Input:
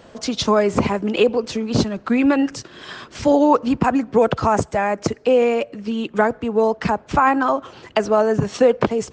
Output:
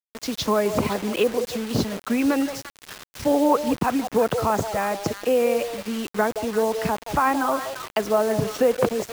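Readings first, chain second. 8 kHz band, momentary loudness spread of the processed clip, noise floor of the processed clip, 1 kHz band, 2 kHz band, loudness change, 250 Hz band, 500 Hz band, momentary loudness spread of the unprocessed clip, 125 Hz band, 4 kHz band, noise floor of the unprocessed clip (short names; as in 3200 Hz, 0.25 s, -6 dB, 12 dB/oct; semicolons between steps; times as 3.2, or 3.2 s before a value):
+0.5 dB, 7 LU, -55 dBFS, -4.5 dB, -4.0 dB, -4.5 dB, -5.0 dB, -4.0 dB, 8 LU, -5.0 dB, -3.0 dB, -47 dBFS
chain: delay with a stepping band-pass 0.172 s, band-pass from 580 Hz, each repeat 1.4 oct, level -6 dB; bit-crush 5-bit; gain -5 dB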